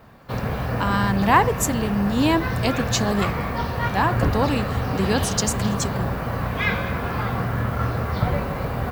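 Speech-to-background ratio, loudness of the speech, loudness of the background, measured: 1.5 dB, -23.5 LUFS, -25.0 LUFS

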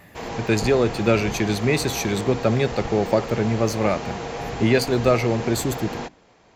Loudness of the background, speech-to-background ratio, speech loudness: -31.5 LUFS, 9.5 dB, -22.0 LUFS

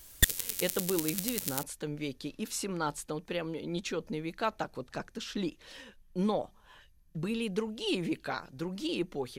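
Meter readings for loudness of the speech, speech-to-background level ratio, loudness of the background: -35.5 LUFS, -3.5 dB, -32.0 LUFS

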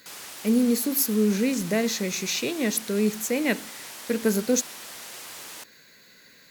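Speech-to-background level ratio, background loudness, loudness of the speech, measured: 13.5 dB, -38.5 LUFS, -25.0 LUFS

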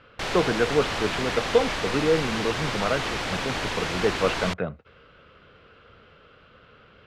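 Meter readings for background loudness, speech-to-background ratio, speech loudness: -28.5 LUFS, 1.5 dB, -27.0 LUFS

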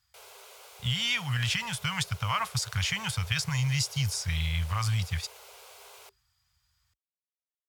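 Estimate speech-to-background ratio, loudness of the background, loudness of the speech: 19.5 dB, -49.0 LUFS, -29.5 LUFS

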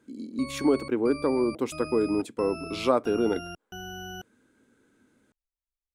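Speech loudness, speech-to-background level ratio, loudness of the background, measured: -27.5 LUFS, 12.5 dB, -40.0 LUFS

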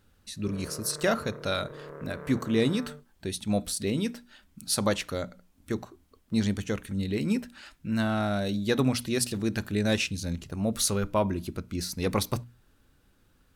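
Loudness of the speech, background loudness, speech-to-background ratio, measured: -29.5 LUFS, -44.0 LUFS, 14.5 dB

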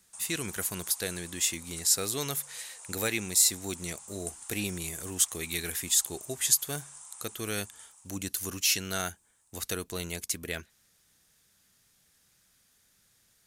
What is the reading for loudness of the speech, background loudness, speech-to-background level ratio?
-29.5 LUFS, -44.5 LUFS, 15.0 dB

